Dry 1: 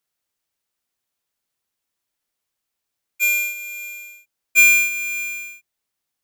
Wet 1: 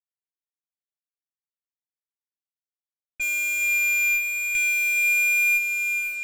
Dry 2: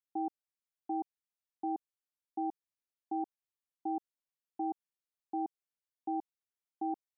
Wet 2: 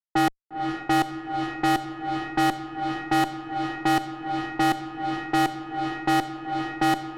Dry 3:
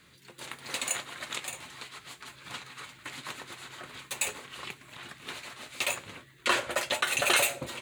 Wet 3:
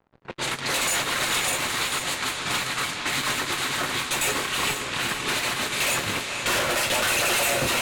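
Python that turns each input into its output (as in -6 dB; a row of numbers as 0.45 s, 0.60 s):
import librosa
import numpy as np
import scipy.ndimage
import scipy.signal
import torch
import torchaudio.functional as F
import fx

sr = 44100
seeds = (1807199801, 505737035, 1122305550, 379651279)

y = fx.fuzz(x, sr, gain_db=45.0, gate_db=-52.0)
y = fx.echo_diffused(y, sr, ms=478, feedback_pct=60, wet_db=-5.5)
y = fx.env_lowpass(y, sr, base_hz=920.0, full_db=-13.5)
y = y * 10.0 ** (-26 / 20.0) / np.sqrt(np.mean(np.square(y)))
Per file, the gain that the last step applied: -11.5 dB, -5.0 dB, -9.5 dB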